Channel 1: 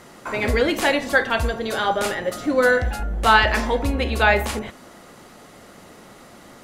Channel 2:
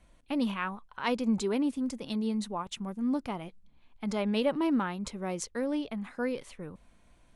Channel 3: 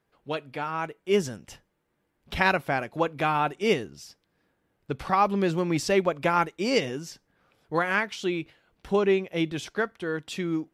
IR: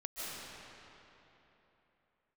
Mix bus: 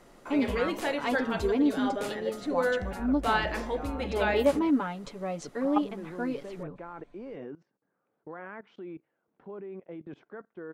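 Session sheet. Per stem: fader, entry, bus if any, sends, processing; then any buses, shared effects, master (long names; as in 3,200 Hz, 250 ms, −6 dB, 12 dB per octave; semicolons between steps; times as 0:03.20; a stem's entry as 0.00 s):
−14.0 dB, 0.00 s, no send, no processing
−4.0 dB, 0.00 s, no send, low-pass filter 5,000 Hz 12 dB per octave; comb filter 7 ms, depth 77%
−6.5 dB, 0.55 s, no send, Chebyshev band-pass filter 180–1,400 Hz, order 2; output level in coarse steps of 19 dB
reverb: not used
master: parametric band 420 Hz +5 dB 2 octaves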